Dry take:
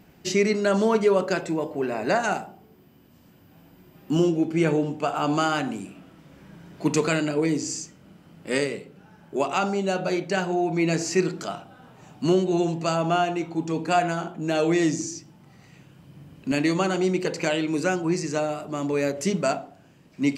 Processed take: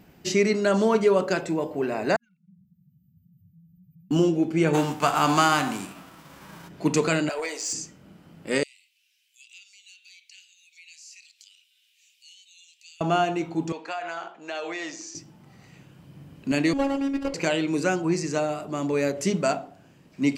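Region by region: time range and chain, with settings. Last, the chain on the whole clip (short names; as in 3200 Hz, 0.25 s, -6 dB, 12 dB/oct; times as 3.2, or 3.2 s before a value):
2.16–4.11 spectral contrast raised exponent 2.9 + compressor 5:1, threshold -41 dBFS + Chebyshev band-stop 180–2200 Hz, order 4
4.73–6.67 spectral whitening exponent 0.6 + bell 1100 Hz +8 dB 0.88 oct
7.29–7.73 HPF 590 Hz 24 dB/oct + sample leveller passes 1
8.63–13.01 steep high-pass 2400 Hz 48 dB/oct + compressor 2:1, threshold -57 dBFS
13.72–15.15 BPF 730–4800 Hz + compressor 5:1, threshold -28 dBFS
16.73–17.34 robotiser 276 Hz + air absorption 120 m + running maximum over 17 samples
whole clip: dry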